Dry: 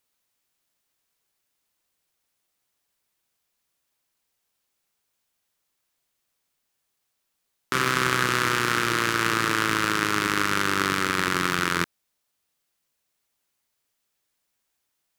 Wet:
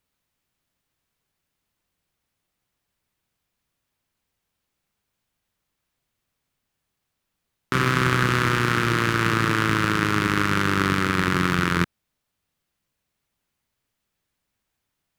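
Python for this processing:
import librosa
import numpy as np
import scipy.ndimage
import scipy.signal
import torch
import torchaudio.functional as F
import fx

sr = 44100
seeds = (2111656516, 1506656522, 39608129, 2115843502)

y = fx.bass_treble(x, sr, bass_db=10, treble_db=-6)
y = y * 10.0 ** (1.0 / 20.0)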